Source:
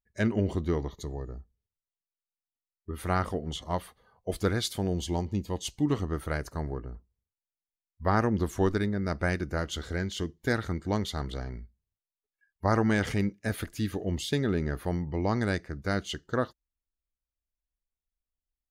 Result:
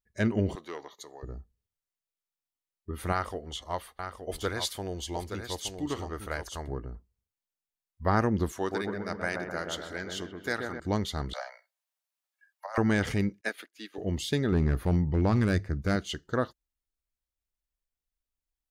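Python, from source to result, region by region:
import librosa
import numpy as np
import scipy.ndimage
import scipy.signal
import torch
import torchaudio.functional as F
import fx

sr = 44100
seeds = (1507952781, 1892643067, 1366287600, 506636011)

y = fx.chain(x, sr, fx.highpass(hz=670.0, slope=12),
    fx.transformer_sat(knee_hz=840.0), at=(0.55, 1.23))
y = fx.chain(y, sr, fx.peak_eq(hz=160.0, db=-12.5, octaves=1.9),
    fx.echo_single(ms=871, db=-7.5), at=(3.12, 6.68))
y = fx.chain(y, sr, fx.highpass(hz=630.0, slope=6),
    fx.echo_wet_lowpass(ms=128, feedback_pct=57, hz=1300.0, wet_db=-3), at=(8.52, 10.8))
y = fx.chain(y, sr, fx.steep_highpass(hz=540.0, slope=96),
    fx.quant_float(bits=8),
    fx.over_compress(threshold_db=-33.0, ratio=-0.5), at=(11.33, 12.78))
y = fx.chain(y, sr, fx.highpass(hz=280.0, slope=24),
    fx.peak_eq(hz=2700.0, db=8.5, octaves=2.2),
    fx.upward_expand(threshold_db=-49.0, expansion=2.5), at=(13.41, 13.98))
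y = fx.chain(y, sr, fx.low_shelf(hz=220.0, db=9.0),
    fx.hum_notches(base_hz=50, count=2),
    fx.clip_hard(threshold_db=-17.0), at=(14.52, 15.96))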